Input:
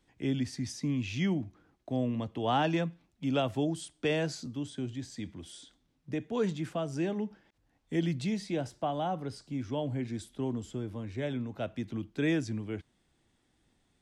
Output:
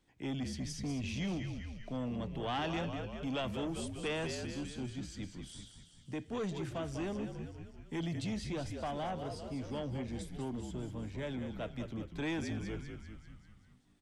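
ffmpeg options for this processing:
-filter_complex "[0:a]asplit=8[a][b][c][d][e][f][g][h];[b]adelay=196,afreqshift=-58,volume=-8dB[i];[c]adelay=392,afreqshift=-116,volume=-12.7dB[j];[d]adelay=588,afreqshift=-174,volume=-17.5dB[k];[e]adelay=784,afreqshift=-232,volume=-22.2dB[l];[f]adelay=980,afreqshift=-290,volume=-26.9dB[m];[g]adelay=1176,afreqshift=-348,volume=-31.7dB[n];[h]adelay=1372,afreqshift=-406,volume=-36.4dB[o];[a][i][j][k][l][m][n][o]amix=inputs=8:normalize=0,acrossover=split=2500[p][q];[p]asoftclip=type=tanh:threshold=-29.5dB[r];[r][q]amix=inputs=2:normalize=0,volume=-3dB"

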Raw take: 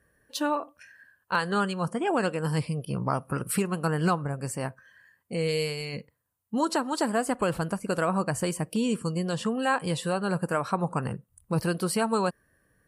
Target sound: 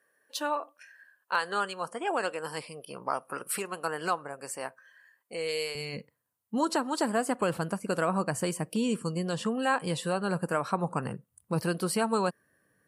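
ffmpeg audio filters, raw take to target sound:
-af "asetnsamples=n=441:p=0,asendcmd='5.75 highpass f 140',highpass=470,volume=-1.5dB"

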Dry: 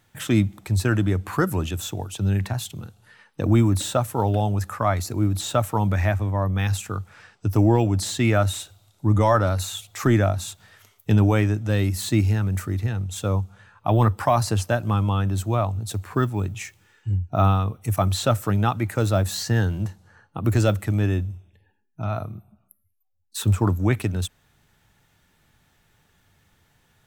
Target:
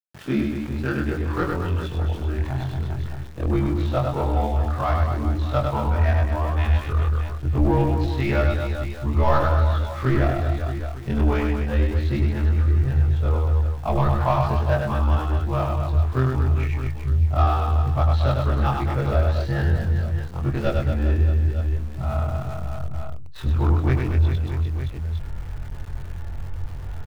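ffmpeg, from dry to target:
-filter_complex "[0:a]afftfilt=real='re':imag='-im':win_size=2048:overlap=0.75,acrossover=split=150[a][b];[a]asoftclip=type=tanh:threshold=-35dB[c];[b]adynamicsmooth=sensitivity=3.5:basefreq=1.3k[d];[c][d]amix=inputs=2:normalize=0,lowpass=f=5.4k:w=0.5412,lowpass=f=5.4k:w=1.3066,aecho=1:1:100|230|399|618.7|904.3:0.631|0.398|0.251|0.158|0.1,areverse,acompressor=mode=upward:threshold=-26dB:ratio=2.5,areverse,asubboost=boost=10.5:cutoff=68,aeval=exprs='val(0)*gte(abs(val(0)),0.0075)':c=same,volume=3dB"

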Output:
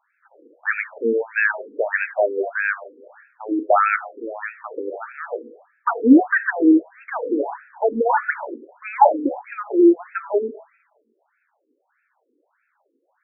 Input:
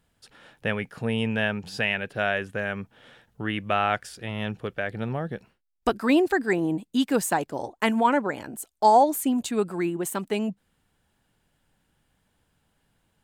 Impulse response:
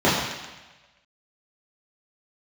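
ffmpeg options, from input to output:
-filter_complex "[0:a]acontrast=73,asplit=2[a][b];[1:a]atrim=start_sample=2205,lowshelf=f=65:g=11.5[c];[b][c]afir=irnorm=-1:irlink=0,volume=-31.5dB[d];[a][d]amix=inputs=2:normalize=0,afftfilt=real='re*between(b*sr/1024,340*pow(1900/340,0.5+0.5*sin(2*PI*1.6*pts/sr))/1.41,340*pow(1900/340,0.5+0.5*sin(2*PI*1.6*pts/sr))*1.41)':imag='im*between(b*sr/1024,340*pow(1900/340,0.5+0.5*sin(2*PI*1.6*pts/sr))/1.41,340*pow(1900/340,0.5+0.5*sin(2*PI*1.6*pts/sr))*1.41)':win_size=1024:overlap=0.75,volume=4dB"

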